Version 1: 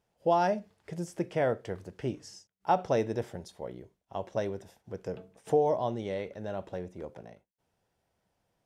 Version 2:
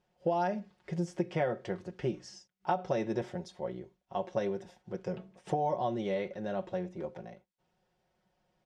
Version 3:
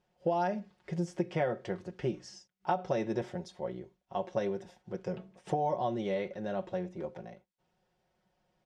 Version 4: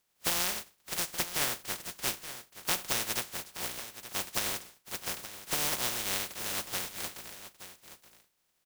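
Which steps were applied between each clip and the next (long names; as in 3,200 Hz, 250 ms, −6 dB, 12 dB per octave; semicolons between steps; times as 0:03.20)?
low-pass filter 5,700 Hz 12 dB per octave; comb filter 5.5 ms, depth 71%; downward compressor 12 to 1, threshold −26 dBFS, peak gain reduction 10.5 dB
no processing that can be heard
compressing power law on the bin magnitudes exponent 0.1; single-tap delay 874 ms −13 dB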